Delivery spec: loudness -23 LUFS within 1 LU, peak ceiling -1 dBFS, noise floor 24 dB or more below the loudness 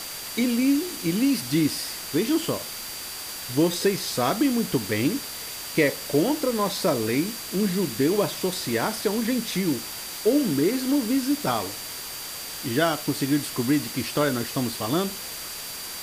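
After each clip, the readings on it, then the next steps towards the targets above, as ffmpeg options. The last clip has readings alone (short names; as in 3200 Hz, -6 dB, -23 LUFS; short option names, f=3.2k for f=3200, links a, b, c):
steady tone 4700 Hz; tone level -40 dBFS; noise floor -36 dBFS; noise floor target -49 dBFS; loudness -25.0 LUFS; peak -9.0 dBFS; loudness target -23.0 LUFS
-> -af "bandreject=f=4.7k:w=30"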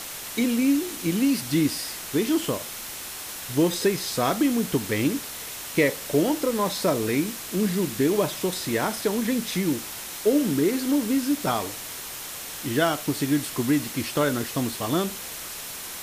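steady tone none; noise floor -36 dBFS; noise floor target -50 dBFS
-> -af "afftdn=nr=14:nf=-36"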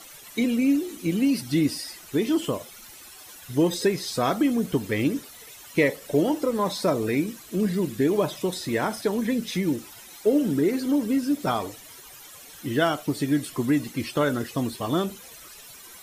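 noise floor -46 dBFS; noise floor target -50 dBFS
-> -af "afftdn=nr=6:nf=-46"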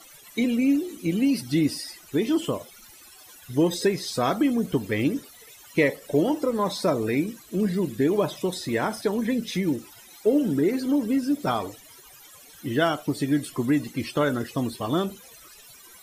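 noise floor -50 dBFS; loudness -25.5 LUFS; peak -9.0 dBFS; loudness target -23.0 LUFS
-> -af "volume=2.5dB"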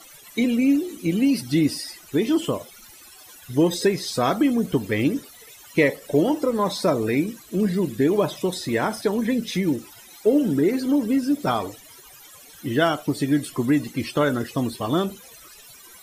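loudness -23.0 LUFS; peak -6.5 dBFS; noise floor -47 dBFS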